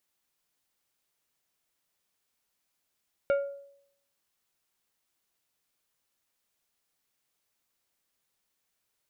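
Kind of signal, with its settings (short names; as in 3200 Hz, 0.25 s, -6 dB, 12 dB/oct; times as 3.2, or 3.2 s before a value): glass hit plate, lowest mode 560 Hz, decay 0.70 s, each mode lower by 9.5 dB, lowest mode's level -20 dB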